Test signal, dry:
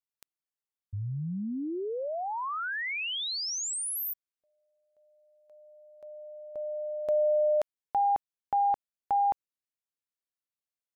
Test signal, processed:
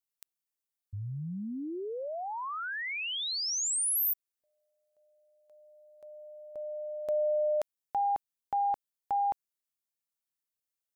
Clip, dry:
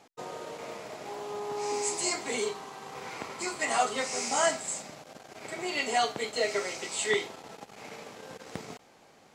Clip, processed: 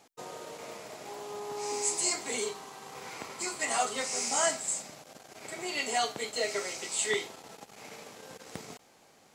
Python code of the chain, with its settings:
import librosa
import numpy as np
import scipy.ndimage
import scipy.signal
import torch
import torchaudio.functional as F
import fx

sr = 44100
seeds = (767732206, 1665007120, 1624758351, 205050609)

y = fx.high_shelf(x, sr, hz=5800.0, db=9.5)
y = y * librosa.db_to_amplitude(-3.5)